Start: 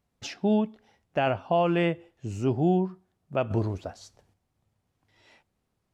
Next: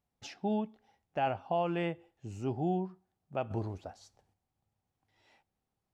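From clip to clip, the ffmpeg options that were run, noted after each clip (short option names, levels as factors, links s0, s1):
-af "equalizer=f=800:t=o:w=0.21:g=8.5,volume=0.355"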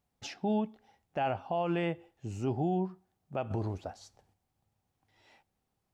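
-af "alimiter=level_in=1.41:limit=0.0631:level=0:latency=1:release=56,volume=0.708,volume=1.58"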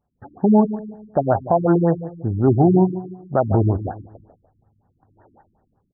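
-filter_complex "[0:a]dynaudnorm=f=110:g=5:m=3.16,asplit=2[s0][s1];[s1]adelay=147,lowpass=f=1500:p=1,volume=0.224,asplit=2[s2][s3];[s3]adelay=147,lowpass=f=1500:p=1,volume=0.42,asplit=2[s4][s5];[s5]adelay=147,lowpass=f=1500:p=1,volume=0.42,asplit=2[s6][s7];[s7]adelay=147,lowpass=f=1500:p=1,volume=0.42[s8];[s0][s2][s4][s6][s8]amix=inputs=5:normalize=0,afftfilt=real='re*lt(b*sr/1024,320*pow(1900/320,0.5+0.5*sin(2*PI*5.4*pts/sr)))':imag='im*lt(b*sr/1024,320*pow(1900/320,0.5+0.5*sin(2*PI*5.4*pts/sr)))':win_size=1024:overlap=0.75,volume=2.11"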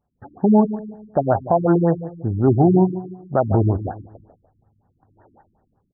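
-af anull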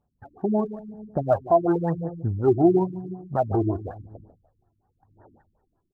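-af "aphaser=in_gain=1:out_gain=1:delay=3:decay=0.61:speed=0.95:type=sinusoidal,volume=0.447"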